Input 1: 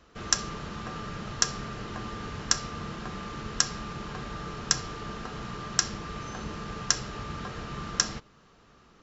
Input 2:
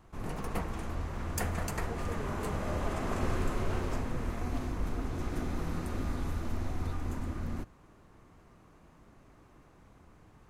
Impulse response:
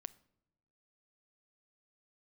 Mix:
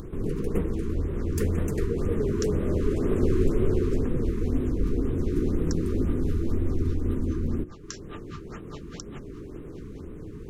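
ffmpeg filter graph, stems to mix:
-filter_complex "[0:a]highpass=44,acompressor=threshold=0.00708:ratio=1.5,aeval=exprs='val(0)*pow(10,-35*(0.5-0.5*cos(2*PI*4.9*n/s))/20)':c=same,adelay=1000,volume=0.531,asplit=2[s0][s1];[s1]volume=0.158[s2];[1:a]lowshelf=f=550:t=q:w=3:g=10,volume=0.596,asplit=2[s3][s4];[s4]volume=0.668[s5];[2:a]atrim=start_sample=2205[s6];[s2][s5]amix=inputs=2:normalize=0[s7];[s7][s6]afir=irnorm=-1:irlink=0[s8];[s0][s3][s8]amix=inputs=3:normalize=0,bandreject=f=60:t=h:w=6,bandreject=f=120:t=h:w=6,bandreject=f=180:t=h:w=6,bandreject=f=240:t=h:w=6,bandreject=f=300:t=h:w=6,bandreject=f=360:t=h:w=6,acompressor=mode=upward:threshold=0.0398:ratio=2.5,afftfilt=real='re*(1-between(b*sr/1024,620*pow(5700/620,0.5+0.5*sin(2*PI*2*pts/sr))/1.41,620*pow(5700/620,0.5+0.5*sin(2*PI*2*pts/sr))*1.41))':imag='im*(1-between(b*sr/1024,620*pow(5700/620,0.5+0.5*sin(2*PI*2*pts/sr))/1.41,620*pow(5700/620,0.5+0.5*sin(2*PI*2*pts/sr))*1.41))':win_size=1024:overlap=0.75"

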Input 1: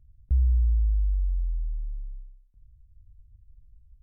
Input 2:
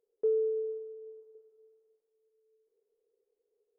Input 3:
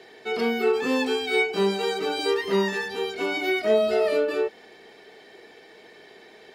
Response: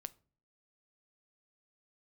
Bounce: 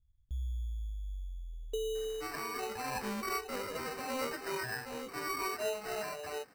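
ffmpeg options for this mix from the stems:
-filter_complex "[0:a]volume=0.126,asplit=2[s0][s1];[s1]volume=0.473[s2];[1:a]acompressor=threshold=0.0316:ratio=6,adelay=1500,volume=0.668[s3];[2:a]highpass=610,aemphasis=mode=production:type=75kf,asplit=2[s4][s5];[s5]adelay=6,afreqshift=-1.4[s6];[s4][s6]amix=inputs=2:normalize=1,adelay=1950,volume=0.376[s7];[3:a]atrim=start_sample=2205[s8];[s2][s8]afir=irnorm=-1:irlink=0[s9];[s0][s3][s7][s9]amix=inputs=4:normalize=0,acrusher=samples=13:mix=1:aa=0.000001"

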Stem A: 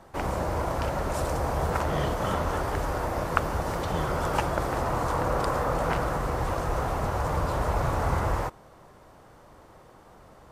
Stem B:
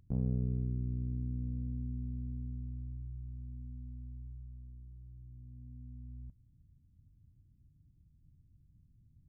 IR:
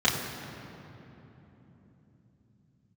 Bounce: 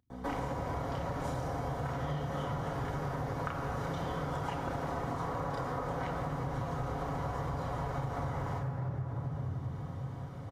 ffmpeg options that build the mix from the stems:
-filter_complex "[0:a]aecho=1:1:7.2:0.39,adelay=100,volume=0.473,asplit=2[s0][s1];[s1]volume=0.376[s2];[1:a]highpass=f=260:p=1,volume=0.531,asplit=2[s3][s4];[s4]volume=0.133[s5];[2:a]atrim=start_sample=2205[s6];[s2][s5]amix=inputs=2:normalize=0[s7];[s7][s6]afir=irnorm=-1:irlink=0[s8];[s0][s3][s8]amix=inputs=3:normalize=0,acompressor=threshold=0.0251:ratio=12"

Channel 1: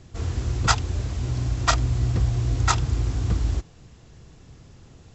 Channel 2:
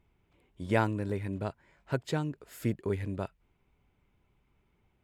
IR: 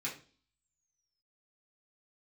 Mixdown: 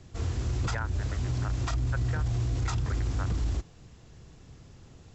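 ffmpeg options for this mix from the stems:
-filter_complex "[0:a]volume=0.708[s0];[1:a]highpass=780,aeval=exprs='val(0)*gte(abs(val(0)),0.0119)':c=same,lowpass=f=1600:t=q:w=2.9,volume=1.12[s1];[s0][s1]amix=inputs=2:normalize=0,acrossover=split=300[s2][s3];[s3]acompressor=threshold=0.0355:ratio=5[s4];[s2][s4]amix=inputs=2:normalize=0,alimiter=limit=0.0794:level=0:latency=1:release=15"

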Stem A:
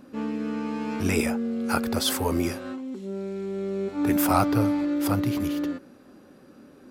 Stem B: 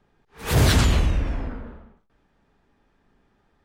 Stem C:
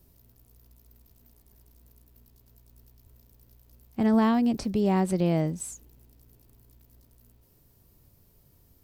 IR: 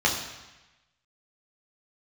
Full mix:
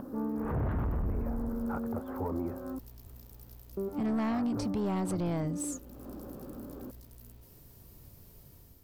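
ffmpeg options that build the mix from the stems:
-filter_complex "[0:a]asoftclip=type=tanh:threshold=0.126,lowpass=f=1200:w=0.5412,lowpass=f=1200:w=1.3066,acompressor=mode=upward:threshold=0.0251:ratio=2.5,volume=0.75,asplit=3[s0][s1][s2];[s0]atrim=end=2.79,asetpts=PTS-STARTPTS,afade=t=out:st=2.786:d=0.004:c=hsin[s3];[s1]atrim=start=2.79:end=3.77,asetpts=PTS-STARTPTS,volume=0[s4];[s2]atrim=start=3.77,asetpts=PTS-STARTPTS,afade=t=in:d=0.004:c=hsin[s5];[s3][s4][s5]concat=n=3:v=0:a=1[s6];[1:a]lowpass=f=1300:w=0.5412,lowpass=f=1300:w=1.3066,volume=0.891[s7];[2:a]dynaudnorm=f=210:g=5:m=2.51,volume=0.841[s8];[s6][s7][s8]amix=inputs=3:normalize=0,asoftclip=type=tanh:threshold=0.15,alimiter=level_in=1.33:limit=0.0631:level=0:latency=1:release=460,volume=0.75"

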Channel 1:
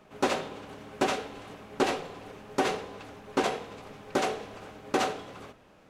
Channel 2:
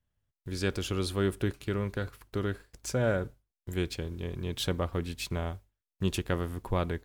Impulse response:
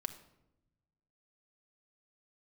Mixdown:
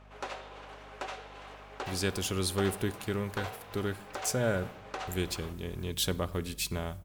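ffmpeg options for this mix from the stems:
-filter_complex "[0:a]highpass=620,highshelf=f=7300:g=-12,acompressor=threshold=0.00794:ratio=2.5,volume=1.12[s0];[1:a]highshelf=f=5200:g=12,adelay=1400,volume=0.531,asplit=2[s1][s2];[s2]volume=0.668[s3];[2:a]atrim=start_sample=2205[s4];[s3][s4]afir=irnorm=-1:irlink=0[s5];[s0][s1][s5]amix=inputs=3:normalize=0,aeval=exprs='val(0)+0.002*(sin(2*PI*50*n/s)+sin(2*PI*2*50*n/s)/2+sin(2*PI*3*50*n/s)/3+sin(2*PI*4*50*n/s)/4+sin(2*PI*5*50*n/s)/5)':c=same"

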